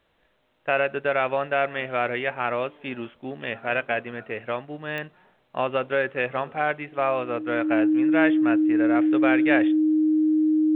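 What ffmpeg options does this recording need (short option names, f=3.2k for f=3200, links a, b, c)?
-af "adeclick=t=4,bandreject=f=310:w=30"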